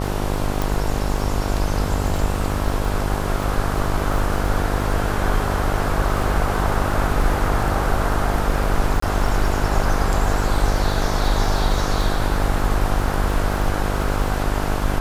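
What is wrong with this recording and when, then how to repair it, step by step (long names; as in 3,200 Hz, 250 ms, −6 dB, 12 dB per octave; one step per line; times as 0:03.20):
mains buzz 50 Hz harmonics 22 −24 dBFS
surface crackle 35 per second −26 dBFS
0:00.62: click
0:09.00–0:09.02: drop-out 24 ms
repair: click removal
hum removal 50 Hz, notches 22
repair the gap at 0:09.00, 24 ms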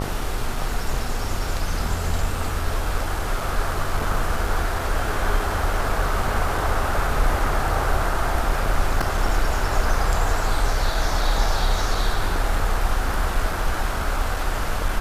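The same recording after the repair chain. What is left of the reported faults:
none of them is left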